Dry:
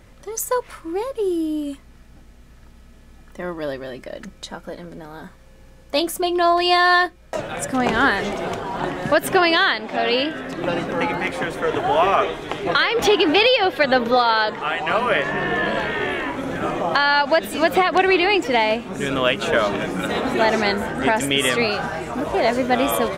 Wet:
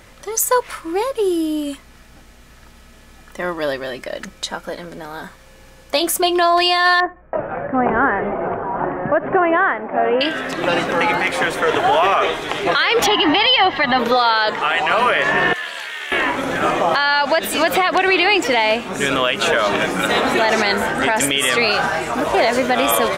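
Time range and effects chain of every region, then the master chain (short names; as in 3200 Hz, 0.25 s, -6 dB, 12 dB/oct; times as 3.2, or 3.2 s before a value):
7–10.21 Gaussian blur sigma 5.8 samples + feedback echo 80 ms, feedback 24%, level -23 dB
13.06–13.99 G.711 law mismatch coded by mu + air absorption 200 m + comb 1 ms, depth 70%
15.53–16.12 differentiator + Doppler distortion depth 0.1 ms
whole clip: low shelf 460 Hz -10 dB; maximiser +14.5 dB; gain -5 dB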